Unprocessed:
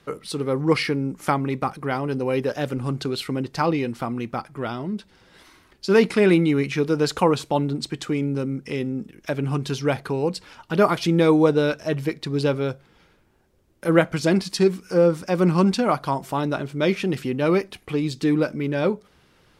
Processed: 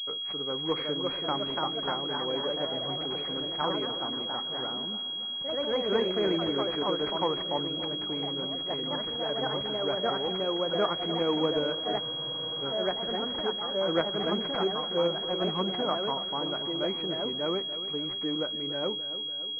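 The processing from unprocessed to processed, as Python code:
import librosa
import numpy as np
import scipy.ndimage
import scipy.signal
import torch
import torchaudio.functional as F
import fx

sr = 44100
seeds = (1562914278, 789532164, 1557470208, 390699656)

y = fx.highpass(x, sr, hz=520.0, slope=6)
y = fx.echo_feedback(y, sr, ms=289, feedback_pct=60, wet_db=-13.5)
y = fx.echo_pitch(y, sr, ms=427, semitones=2, count=3, db_per_echo=-3.0)
y = fx.spec_freeze(y, sr, seeds[0], at_s=12.02, hold_s=0.59)
y = fx.pwm(y, sr, carrier_hz=3300.0)
y = F.gain(torch.from_numpy(y), -7.0).numpy()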